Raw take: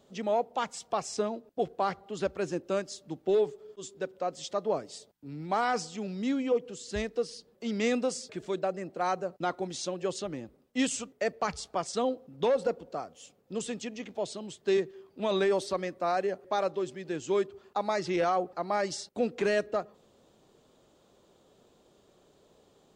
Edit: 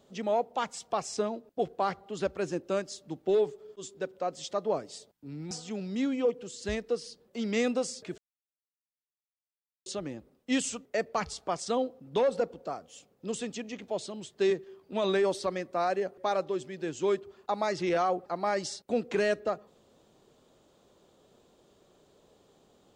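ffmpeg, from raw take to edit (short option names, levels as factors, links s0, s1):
-filter_complex "[0:a]asplit=4[s0][s1][s2][s3];[s0]atrim=end=5.512[s4];[s1]atrim=start=5.778:end=8.45,asetpts=PTS-STARTPTS,afade=t=out:st=2.668:d=0.004:c=hsin[s5];[s2]atrim=start=8.45:end=10.13,asetpts=PTS-STARTPTS,volume=0[s6];[s3]atrim=start=10.13,asetpts=PTS-STARTPTS,afade=t=in:d=0.004:c=hsin[s7];[s5][s6][s7]concat=n=3:v=0:a=1[s8];[s4][s8]acrossfade=d=0.004:c1=hsin:c2=hsin"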